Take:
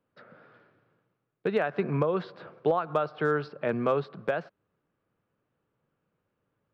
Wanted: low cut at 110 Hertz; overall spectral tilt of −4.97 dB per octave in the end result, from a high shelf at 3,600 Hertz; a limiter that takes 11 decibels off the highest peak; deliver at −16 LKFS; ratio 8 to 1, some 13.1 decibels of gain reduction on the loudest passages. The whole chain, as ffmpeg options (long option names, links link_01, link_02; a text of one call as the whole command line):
ffmpeg -i in.wav -af "highpass=110,highshelf=frequency=3600:gain=7.5,acompressor=threshold=-35dB:ratio=8,volume=27.5dB,alimiter=limit=-4dB:level=0:latency=1" out.wav